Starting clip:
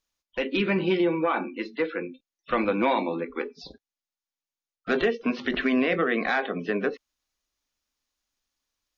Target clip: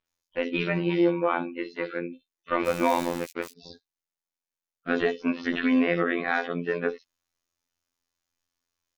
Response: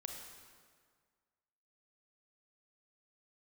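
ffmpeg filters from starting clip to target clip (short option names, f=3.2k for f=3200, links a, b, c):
-filter_complex "[0:a]asplit=3[a][b][c];[a]afade=t=out:st=2.59:d=0.02[d];[b]aeval=exprs='val(0)*gte(abs(val(0)),0.0355)':c=same,afade=t=in:st=2.59:d=0.02,afade=t=out:st=3.51:d=0.02[e];[c]afade=t=in:st=3.51:d=0.02[f];[d][e][f]amix=inputs=3:normalize=0,afftfilt=real='hypot(re,im)*cos(PI*b)':imag='0':win_size=2048:overlap=0.75,acrossover=split=3800[g][h];[h]adelay=60[i];[g][i]amix=inputs=2:normalize=0,volume=2.5dB"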